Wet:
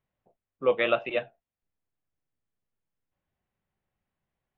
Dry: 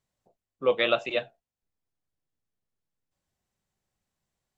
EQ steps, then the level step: low-pass 2.9 kHz 24 dB/octave; 0.0 dB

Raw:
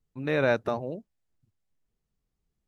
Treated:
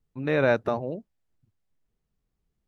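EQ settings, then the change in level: treble shelf 4 kHz -6.5 dB; +2.5 dB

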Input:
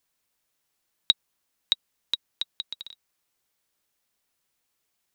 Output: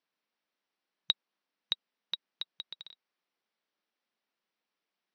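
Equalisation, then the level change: brick-wall FIR band-pass 160–6100 Hz; distance through air 150 m; -3.5 dB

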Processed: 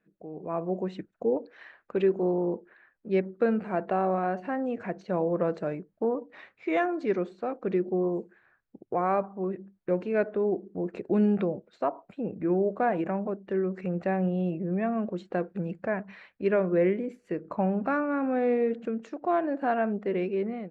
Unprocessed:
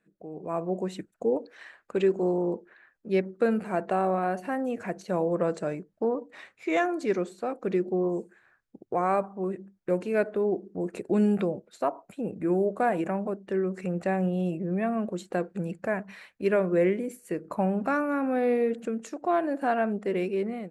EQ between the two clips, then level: distance through air 210 m; 0.0 dB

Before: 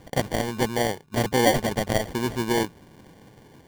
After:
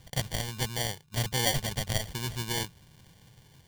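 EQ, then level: FFT filter 140 Hz 0 dB, 270 Hz -15 dB, 2.1 kHz -4 dB, 3.1 kHz +2 dB; -2.0 dB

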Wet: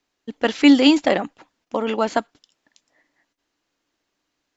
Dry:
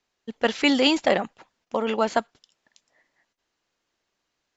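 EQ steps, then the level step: peaking EQ 290 Hz +10 dB 0.26 oct; +1.5 dB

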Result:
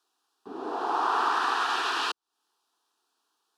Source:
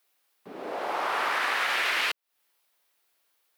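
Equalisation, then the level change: distance through air 76 m; static phaser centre 570 Hz, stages 6; +5.5 dB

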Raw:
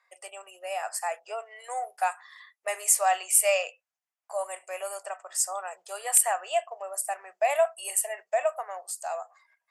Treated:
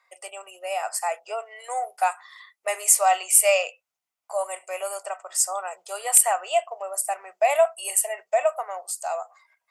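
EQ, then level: band-stop 1.7 kHz, Q 7.6; +4.5 dB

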